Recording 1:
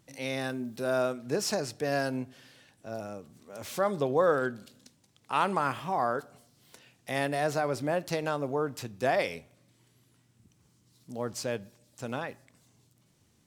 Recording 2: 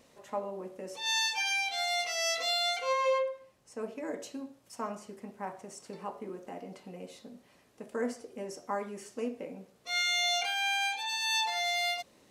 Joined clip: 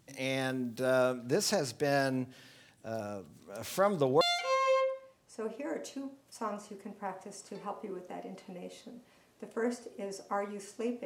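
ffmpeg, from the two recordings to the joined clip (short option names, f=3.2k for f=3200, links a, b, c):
-filter_complex "[0:a]apad=whole_dur=11.05,atrim=end=11.05,atrim=end=4.212[a];[1:a]atrim=start=2.588:end=9.43[b];[a][b]acrossfade=d=0.004:c1=hsin:c2=hsin"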